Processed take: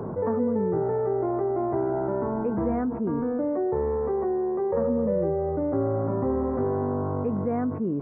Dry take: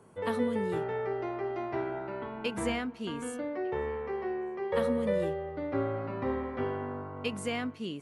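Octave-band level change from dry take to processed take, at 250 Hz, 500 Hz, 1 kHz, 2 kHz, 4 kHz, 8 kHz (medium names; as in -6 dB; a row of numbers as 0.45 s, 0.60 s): +8.5 dB, +7.5 dB, +5.5 dB, -8.0 dB, under -35 dB, under -30 dB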